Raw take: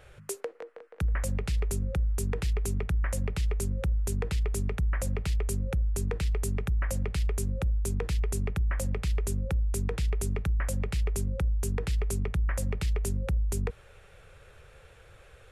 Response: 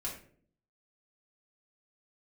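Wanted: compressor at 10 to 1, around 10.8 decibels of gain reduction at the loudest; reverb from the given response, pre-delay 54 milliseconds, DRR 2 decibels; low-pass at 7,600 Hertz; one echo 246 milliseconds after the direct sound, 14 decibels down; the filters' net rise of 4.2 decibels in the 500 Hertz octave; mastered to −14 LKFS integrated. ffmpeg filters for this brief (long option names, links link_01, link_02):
-filter_complex "[0:a]lowpass=7600,equalizer=frequency=500:width_type=o:gain=5,acompressor=threshold=-35dB:ratio=10,aecho=1:1:246:0.2,asplit=2[link_01][link_02];[1:a]atrim=start_sample=2205,adelay=54[link_03];[link_02][link_03]afir=irnorm=-1:irlink=0,volume=-3dB[link_04];[link_01][link_04]amix=inputs=2:normalize=0,volume=21dB"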